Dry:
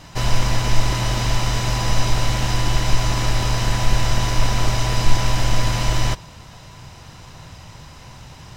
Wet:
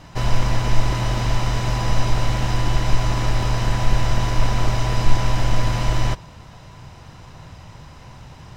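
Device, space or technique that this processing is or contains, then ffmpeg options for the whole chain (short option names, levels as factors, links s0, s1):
behind a face mask: -af "highshelf=f=2800:g=-8"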